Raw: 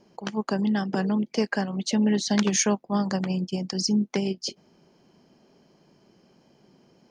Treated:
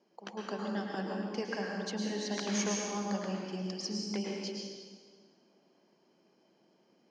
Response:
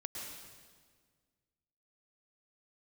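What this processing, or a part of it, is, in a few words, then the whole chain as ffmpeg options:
supermarket ceiling speaker: -filter_complex "[0:a]highpass=270,lowpass=6.5k[a];[1:a]atrim=start_sample=2205[b];[a][b]afir=irnorm=-1:irlink=0,volume=-6.5dB"

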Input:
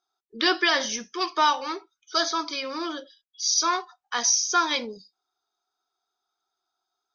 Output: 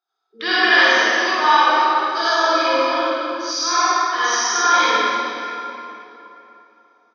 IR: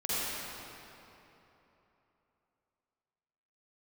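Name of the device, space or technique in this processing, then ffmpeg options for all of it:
station announcement: -filter_complex "[0:a]highpass=330,lowpass=4.5k,equalizer=f=1.7k:t=o:w=0.44:g=5,aecho=1:1:52.48|113.7:0.708|0.282[a];[1:a]atrim=start_sample=2205[b];[a][b]afir=irnorm=-1:irlink=0,asettb=1/sr,asplit=3[c][d][e];[c]atrim=end=2.394[f];[d]atrim=start=2.39:end=3.51,asetpts=PTS-STARTPTS,afade=t=in:d=0.004:c=qsin,afade=t=out:st=1.116:d=0.004:c=qsin,equalizer=f=600:t=o:w=1.4:g=5.5[g];[e]atrim=start=3.506[h];[f][g]acrossfade=d=0.004:c1=hsin:c2=qsin[i];[i][h]acrossfade=d=0.004:c1=qsin:c2=hsin,volume=-1.5dB"

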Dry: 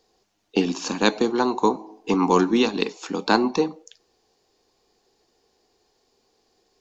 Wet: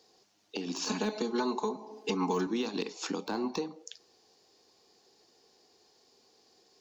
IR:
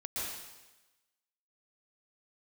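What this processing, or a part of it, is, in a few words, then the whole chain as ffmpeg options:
broadcast voice chain: -filter_complex "[0:a]highpass=110,deesser=0.7,acompressor=threshold=-31dB:ratio=3,equalizer=f=5k:t=o:w=0.99:g=5,alimiter=limit=-22.5dB:level=0:latency=1:release=183,asettb=1/sr,asplit=3[a][b][c];[a]atrim=end=0.874[d];[b]atrim=start=0.87:end=2.47,asetpts=PTS-STARTPTS,afade=t=in:d=0.004:c=qsin,afade=t=out:st=1.596:d=0.004:c=qsin,aecho=1:1:4.7:0.95,atrim=end_sample=70560[e];[c]atrim=start=2.466[f];[d][e]acrossfade=d=0.004:c1=hsin:c2=qsin[g];[g][f]acrossfade=d=0.004:c1=qsin:c2=hsin"

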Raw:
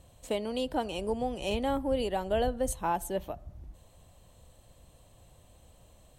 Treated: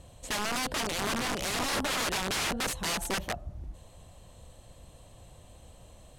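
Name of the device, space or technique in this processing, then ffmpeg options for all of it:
overflowing digital effects unit: -af "aeval=exprs='(mod(33.5*val(0)+1,2)-1)/33.5':c=same,lowpass=11k,volume=5.5dB"

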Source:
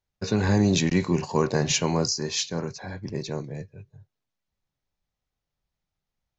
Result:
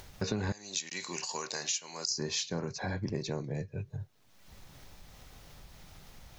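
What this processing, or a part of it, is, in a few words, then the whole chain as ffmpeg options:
upward and downward compression: -filter_complex "[0:a]asettb=1/sr,asplit=3[a][b][c];[a]atrim=end=0.524[d];[b]atrim=start=0.52:end=2.11,asetpts=PTS-STARTPTS,afade=t=in:d=0.004:c=qsin,afade=t=out:st=1.586:d=0.004:c=qsin,aderivative[e];[c]atrim=start=2.106[f];[d][e]acrossfade=d=0.004:c1=hsin:c2=qsin[g];[g][f]acrossfade=d=0.004:c1=qsin:c2=hsin,acompressor=mode=upward:threshold=-33dB:ratio=2.5,acompressor=threshold=-35dB:ratio=6,volume=4dB"

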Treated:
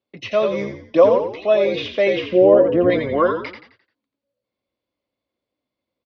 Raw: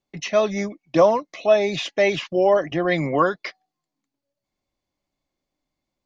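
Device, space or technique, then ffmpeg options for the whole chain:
frequency-shifting delay pedal into a guitar cabinet: -filter_complex "[0:a]asettb=1/sr,asplit=3[a][b][c];[a]atrim=end=2.284[d];[b]atrim=start=2.28:end=2.9,asetpts=PTS-STARTPTS,afade=t=in:d=0.004:c=qsin,afade=t=out:st=0.616:d=0.004:c=qsin,tiltshelf=f=900:g=8[e];[c]atrim=start=2.896[f];[d][e]acrossfade=d=0.004:c1=hsin:c2=qsin[g];[g][f]acrossfade=d=0.004:c1=qsin:c2=hsin,asplit=6[h][i][j][k][l][m];[i]adelay=87,afreqshift=-57,volume=-6.5dB[n];[j]adelay=174,afreqshift=-114,volume=-14.5dB[o];[k]adelay=261,afreqshift=-171,volume=-22.4dB[p];[l]adelay=348,afreqshift=-228,volume=-30.4dB[q];[m]adelay=435,afreqshift=-285,volume=-38.3dB[r];[h][n][o][p][q][r]amix=inputs=6:normalize=0,highpass=97,equalizer=f=160:t=q:w=4:g=-9,equalizer=f=510:t=q:w=4:g=6,equalizer=f=800:t=q:w=4:g=-6,equalizer=f=1.8k:t=q:w=4:g=-4,lowpass=f=4.2k:w=0.5412,lowpass=f=4.2k:w=1.3066"

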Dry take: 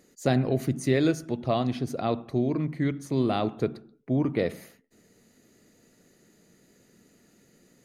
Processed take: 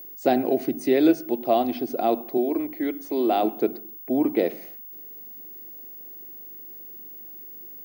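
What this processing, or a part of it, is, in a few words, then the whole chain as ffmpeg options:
old television with a line whistle: -filter_complex "[0:a]asettb=1/sr,asplit=3[a][b][c];[a]atrim=end=2.374[d];[b]atrim=start=2.37:end=3.43,asetpts=PTS-STARTPTS,afade=t=in:d=0.004:c=qsin,afade=t=out:st=1.056:d=0.004:c=qsin,highpass=280[e];[c]atrim=start=3.426[f];[d][e]acrossfade=d=0.004:c1=hsin:c2=qsin[g];[g][f]acrossfade=d=0.004:c1=qsin:c2=hsin,highpass=f=230:w=0.5412,highpass=f=230:w=1.3066,equalizer=f=340:t=q:w=4:g=6,equalizer=f=740:t=q:w=4:g=7,equalizer=f=1.2k:t=q:w=4:g=-6,equalizer=f=1.8k:t=q:w=4:g=-4,equalizer=f=4k:t=q:w=4:g=-4,equalizer=f=6.9k:t=q:w=4:g=-10,lowpass=f=8.6k:w=0.5412,lowpass=f=8.6k:w=1.3066,aeval=exprs='val(0)+0.00891*sin(2*PI*15625*n/s)':c=same,volume=2.5dB"

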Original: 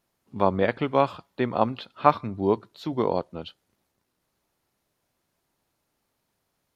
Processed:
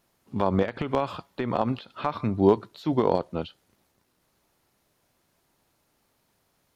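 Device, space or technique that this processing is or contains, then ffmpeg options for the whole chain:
de-esser from a sidechain: -filter_complex "[0:a]asplit=2[a][b];[b]highpass=4.4k,apad=whole_len=297718[c];[a][c]sidechaincompress=threshold=-51dB:ratio=12:attack=2.1:release=77,volume=6dB"

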